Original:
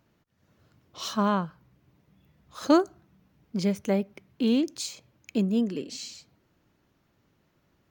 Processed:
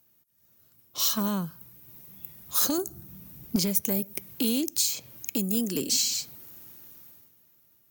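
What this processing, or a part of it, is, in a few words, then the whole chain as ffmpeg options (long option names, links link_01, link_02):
FM broadcast chain: -filter_complex "[0:a]highpass=67,dynaudnorm=framelen=340:gausssize=9:maxgain=11.5dB,acrossover=split=360|5300[link_01][link_02][link_03];[link_01]acompressor=threshold=-25dB:ratio=4[link_04];[link_02]acompressor=threshold=-35dB:ratio=4[link_05];[link_03]acompressor=threshold=-45dB:ratio=4[link_06];[link_04][link_05][link_06]amix=inputs=3:normalize=0,aemphasis=mode=production:type=50fm,alimiter=limit=-18.5dB:level=0:latency=1:release=291,asoftclip=type=hard:threshold=-21dB,lowpass=frequency=15000:width=0.5412,lowpass=frequency=15000:width=1.3066,aemphasis=mode=production:type=50fm,agate=range=-8dB:threshold=-50dB:ratio=16:detection=peak,asettb=1/sr,asplit=3[link_07][link_08][link_09];[link_07]atrim=end=2.784[link_10];[link_08]atrim=start=2.78:end=3.56,asetpts=PTS-STARTPTS,afade=type=in:duration=0.004:curve=qsin,afade=type=out:start_time=0.776:duration=0.004:curve=qsin,lowshelf=frequency=270:gain=10.5[link_11];[link_09]atrim=start=3.556[link_12];[link_10][link_11]acrossfade=duration=0.004:curve1=hsin:curve2=qsin[link_13];[link_13][link_12]acrossfade=duration=0.004:curve1=qsin:curve2=hsin"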